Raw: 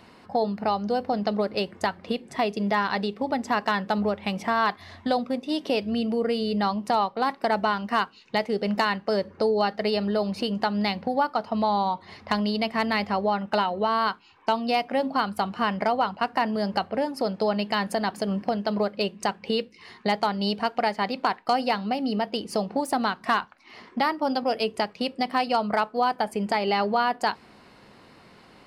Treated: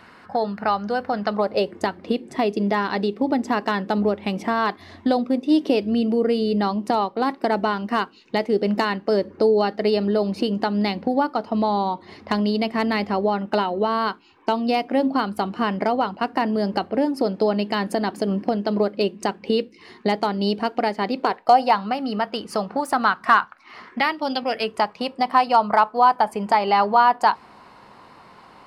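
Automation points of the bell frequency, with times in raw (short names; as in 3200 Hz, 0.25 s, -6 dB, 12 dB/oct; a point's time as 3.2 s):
bell +11 dB 0.98 oct
1.25 s 1500 Hz
1.78 s 320 Hz
21.12 s 320 Hz
21.89 s 1300 Hz
23.83 s 1300 Hz
24.24 s 4100 Hz
24.84 s 990 Hz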